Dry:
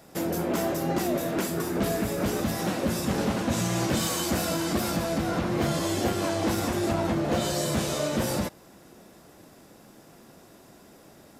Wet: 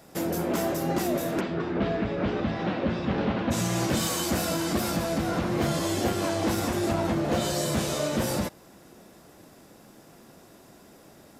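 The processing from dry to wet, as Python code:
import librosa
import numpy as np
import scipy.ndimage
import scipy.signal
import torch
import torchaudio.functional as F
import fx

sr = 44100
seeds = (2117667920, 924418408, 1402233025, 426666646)

y = fx.lowpass(x, sr, hz=3600.0, slope=24, at=(1.39, 3.5), fade=0.02)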